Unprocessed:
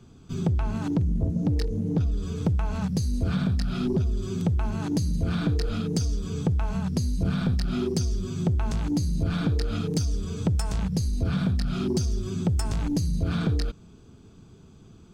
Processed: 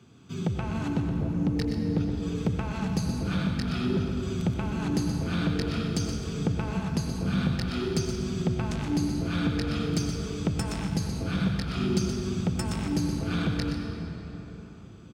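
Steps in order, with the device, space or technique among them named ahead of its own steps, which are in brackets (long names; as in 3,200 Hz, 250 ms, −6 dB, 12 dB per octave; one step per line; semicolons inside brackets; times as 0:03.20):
PA in a hall (high-pass filter 110 Hz 12 dB per octave; parametric band 2,300 Hz +6 dB 1.3 octaves; single-tap delay 123 ms −8.5 dB; convolution reverb RT60 4.2 s, pre-delay 82 ms, DRR 4 dB)
level −2.5 dB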